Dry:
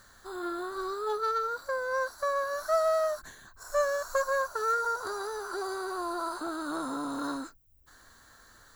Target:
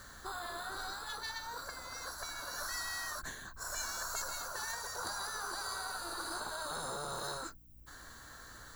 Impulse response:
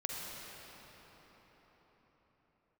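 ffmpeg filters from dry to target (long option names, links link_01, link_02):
-filter_complex "[0:a]afftfilt=real='re*lt(hypot(re,im),0.0631)':imag='im*lt(hypot(re,im),0.0631)':win_size=1024:overlap=0.75,acrossover=split=260|3000[link_01][link_02][link_03];[link_02]acompressor=threshold=-43dB:ratio=10[link_04];[link_01][link_04][link_03]amix=inputs=3:normalize=0,aeval=exprs='val(0)+0.000447*(sin(2*PI*60*n/s)+sin(2*PI*2*60*n/s)/2+sin(2*PI*3*60*n/s)/3+sin(2*PI*4*60*n/s)/4+sin(2*PI*5*60*n/s)/5)':channel_layout=same,volume=4.5dB"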